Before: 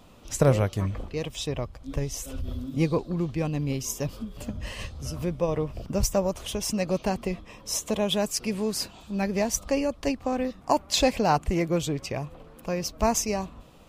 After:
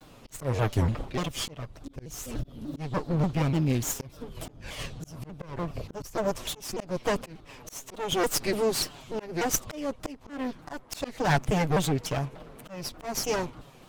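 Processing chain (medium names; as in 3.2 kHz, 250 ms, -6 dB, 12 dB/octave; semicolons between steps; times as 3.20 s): comb filter that takes the minimum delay 7.2 ms; slow attack 352 ms; vibrato with a chosen wave saw down 3.4 Hz, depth 250 cents; trim +3 dB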